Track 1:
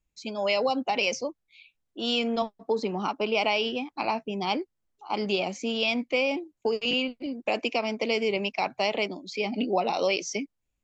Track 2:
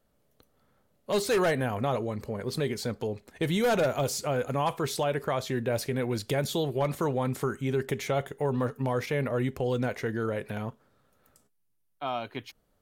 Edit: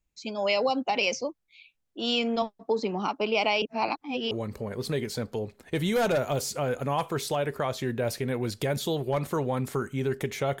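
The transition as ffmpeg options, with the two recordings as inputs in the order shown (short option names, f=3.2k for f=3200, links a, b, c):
-filter_complex "[0:a]apad=whole_dur=10.6,atrim=end=10.6,asplit=2[a][b];[a]atrim=end=3.622[c];[b]atrim=start=3.618:end=4.312,asetpts=PTS-STARTPTS,areverse[d];[1:a]atrim=start=1.988:end=8.28[e];[c][d]acrossfade=d=0.004:c1=hsin:c2=hsin[f];[f][e]acrossfade=d=0.004:c1=hsin:c2=hsin"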